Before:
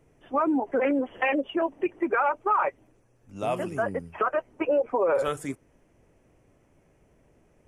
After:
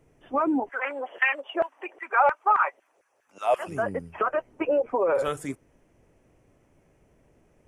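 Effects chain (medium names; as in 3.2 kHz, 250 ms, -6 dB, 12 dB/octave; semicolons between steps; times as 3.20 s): 0.68–3.67 s: LFO high-pass saw down 1.6 Hz -> 6.8 Hz 500–1800 Hz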